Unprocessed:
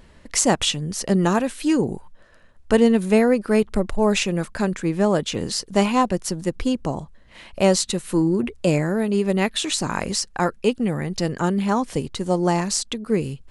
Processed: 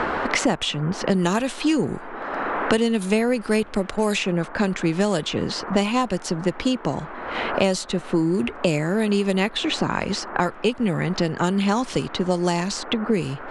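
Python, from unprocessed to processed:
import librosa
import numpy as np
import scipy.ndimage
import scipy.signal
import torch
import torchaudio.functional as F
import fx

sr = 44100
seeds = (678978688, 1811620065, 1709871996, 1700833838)

y = fx.dmg_noise_band(x, sr, seeds[0], low_hz=220.0, high_hz=1500.0, level_db=-43.0)
y = fx.env_lowpass(y, sr, base_hz=2600.0, full_db=-13.5)
y = fx.dynamic_eq(y, sr, hz=3200.0, q=1.2, threshold_db=-40.0, ratio=4.0, max_db=4)
y = fx.band_squash(y, sr, depth_pct=100)
y = y * 10.0 ** (-2.0 / 20.0)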